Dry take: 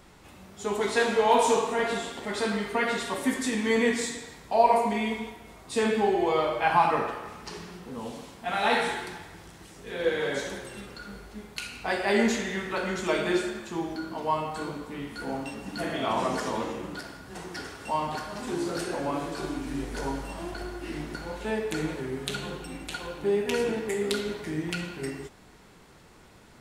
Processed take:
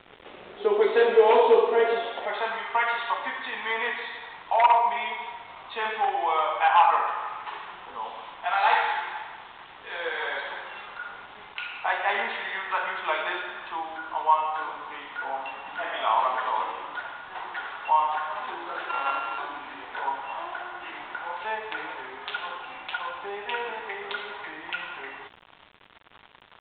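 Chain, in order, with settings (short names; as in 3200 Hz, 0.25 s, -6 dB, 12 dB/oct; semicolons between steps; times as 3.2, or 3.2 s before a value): 18.89–19.38 sample sorter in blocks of 32 samples; in parallel at -0.5 dB: compressor 16:1, threshold -35 dBFS, peak gain reduction 20.5 dB; on the sum: wavefolder -14.5 dBFS; high-pass sweep 430 Hz -> 920 Hz, 1.79–2.61; bit-crush 7-bit; downsampling 8000 Hz; gain -1.5 dB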